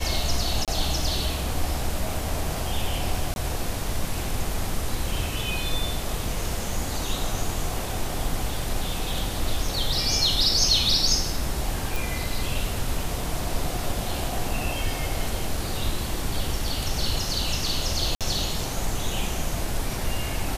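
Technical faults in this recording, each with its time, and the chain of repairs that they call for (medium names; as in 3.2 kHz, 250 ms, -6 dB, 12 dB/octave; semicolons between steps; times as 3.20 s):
0.65–0.68 s: dropout 27 ms
3.34–3.36 s: dropout 21 ms
11.96 s: pop
18.15–18.21 s: dropout 57 ms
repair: de-click; interpolate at 0.65 s, 27 ms; interpolate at 3.34 s, 21 ms; interpolate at 18.15 s, 57 ms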